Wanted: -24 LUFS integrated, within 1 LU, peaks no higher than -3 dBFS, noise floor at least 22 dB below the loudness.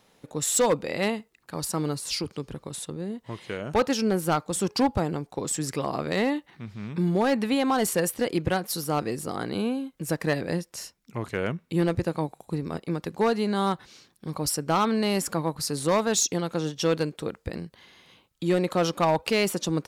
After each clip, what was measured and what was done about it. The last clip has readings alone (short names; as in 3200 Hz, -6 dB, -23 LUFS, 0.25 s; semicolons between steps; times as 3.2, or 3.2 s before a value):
clipped 0.7%; flat tops at -16.0 dBFS; loudness -27.0 LUFS; peak -16.0 dBFS; loudness target -24.0 LUFS
-> clip repair -16 dBFS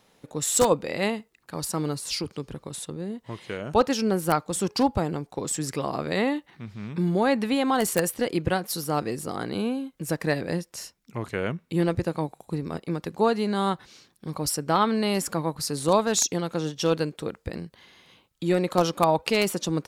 clipped 0.0%; loudness -26.5 LUFS; peak -7.0 dBFS; loudness target -24.0 LUFS
-> gain +2.5 dB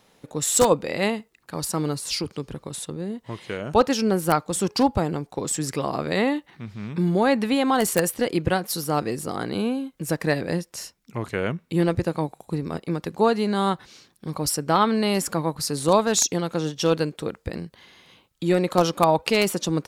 loudness -24.0 LUFS; peak -4.5 dBFS; noise floor -63 dBFS